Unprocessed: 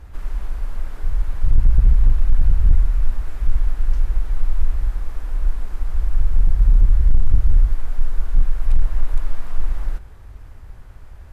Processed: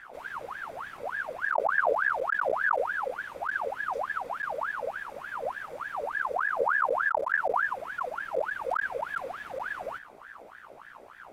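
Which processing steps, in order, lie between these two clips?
mains hum 60 Hz, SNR 30 dB
notch comb filter 1,200 Hz
ring modulator whose carrier an LFO sweeps 1,100 Hz, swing 55%, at 3.4 Hz
level −1.5 dB

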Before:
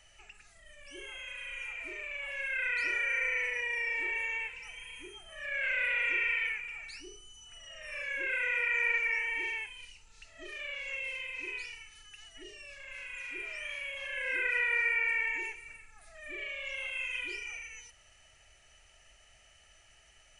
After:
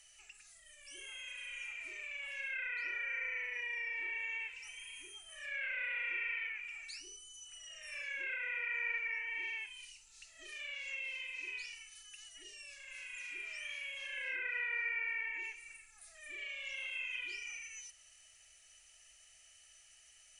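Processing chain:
first-order pre-emphasis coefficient 0.9
treble cut that deepens with the level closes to 2,200 Hz, closed at −39.5 dBFS
level +5.5 dB

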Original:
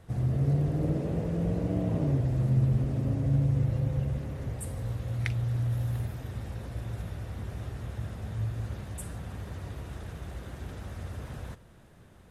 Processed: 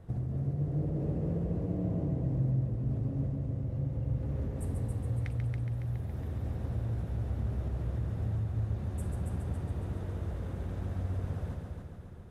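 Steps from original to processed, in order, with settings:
tilt shelving filter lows +6.5 dB, about 1,100 Hz
downward compressor, threshold −27 dBFS, peak gain reduction 13 dB
on a send: echo machine with several playback heads 139 ms, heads first and second, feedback 56%, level −7 dB
on the sum: level −4 dB

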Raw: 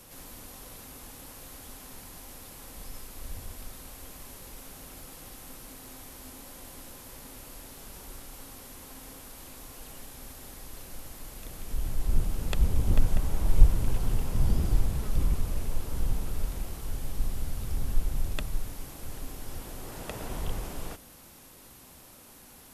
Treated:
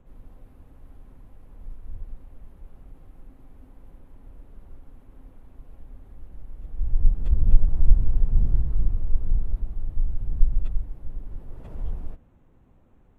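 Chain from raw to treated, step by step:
adaptive Wiener filter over 9 samples
spectral tilt −3.5 dB per octave
time stretch by phase vocoder 0.58×
level −8 dB

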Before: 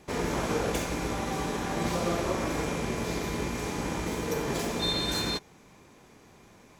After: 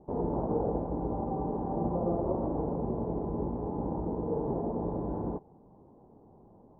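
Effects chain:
Chebyshev low-pass filter 880 Hz, order 4

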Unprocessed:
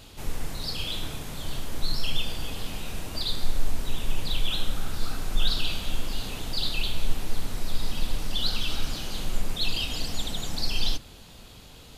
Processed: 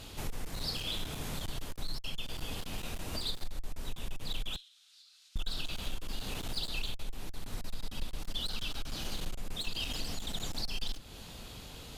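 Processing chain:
downward compressor 2.5 to 1, threshold −33 dBFS, peak gain reduction 13.5 dB
0:04.56–0:05.36: four-pole ladder band-pass 4,900 Hz, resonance 30%
asymmetric clip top −32.5 dBFS, bottom −24 dBFS
level +1 dB

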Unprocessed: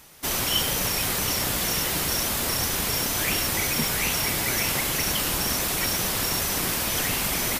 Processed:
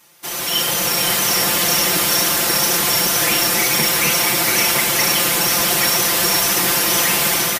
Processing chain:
high-pass filter 290 Hz 6 dB per octave
comb filter 5.8 ms, depth 96%
automatic gain control gain up to 11.5 dB
delay that swaps between a low-pass and a high-pass 259 ms, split 1,700 Hz, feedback 73%, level −3 dB
level −3.5 dB

